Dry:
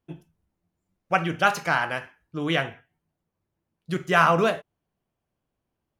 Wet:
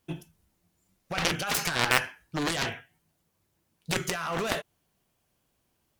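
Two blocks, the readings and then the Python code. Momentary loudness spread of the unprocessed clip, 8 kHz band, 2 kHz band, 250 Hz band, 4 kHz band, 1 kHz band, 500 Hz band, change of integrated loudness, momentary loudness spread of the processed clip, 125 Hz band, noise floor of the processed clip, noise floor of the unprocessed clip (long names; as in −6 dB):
14 LU, +9.0 dB, −4.5 dB, −5.5 dB, +2.5 dB, −9.0 dB, −8.0 dB, −5.0 dB, 16 LU, −5.0 dB, −75 dBFS, −82 dBFS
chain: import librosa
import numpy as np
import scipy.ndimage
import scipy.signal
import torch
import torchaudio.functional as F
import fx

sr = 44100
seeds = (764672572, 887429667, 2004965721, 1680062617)

y = fx.high_shelf(x, sr, hz=2400.0, db=12.0)
y = fx.over_compress(y, sr, threshold_db=-25.0, ratio=-1.0)
y = fx.cheby_harmonics(y, sr, harmonics=(3, 7), levels_db=(-23, -13), full_scale_db=-6.0)
y = F.gain(torch.from_numpy(y), 2.0).numpy()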